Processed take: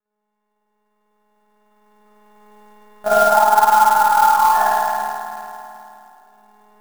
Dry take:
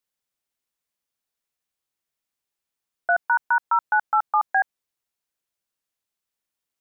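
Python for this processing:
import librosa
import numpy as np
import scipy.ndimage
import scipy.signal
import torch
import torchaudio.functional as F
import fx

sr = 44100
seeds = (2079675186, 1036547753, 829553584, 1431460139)

p1 = fx.freq_snap(x, sr, grid_st=4)
p2 = fx.recorder_agc(p1, sr, target_db=-15.0, rise_db_per_s=12.0, max_gain_db=30)
p3 = fx.lpc_monotone(p2, sr, seeds[0], pitch_hz=210.0, order=16)
p4 = scipy.signal.sosfilt(scipy.signal.butter(2, 1400.0, 'lowpass', fs=sr, output='sos'), p3)
p5 = fx.peak_eq(p4, sr, hz=190.0, db=8.5, octaves=2.9)
p6 = p5 + fx.echo_banded(p5, sr, ms=364, feedback_pct=68, hz=330.0, wet_db=-10.5, dry=0)
p7 = fx.rev_spring(p6, sr, rt60_s=2.7, pass_ms=(52,), chirp_ms=30, drr_db=-10.0)
p8 = fx.clock_jitter(p7, sr, seeds[1], jitter_ms=0.026)
y = F.gain(torch.from_numpy(p8), -2.0).numpy()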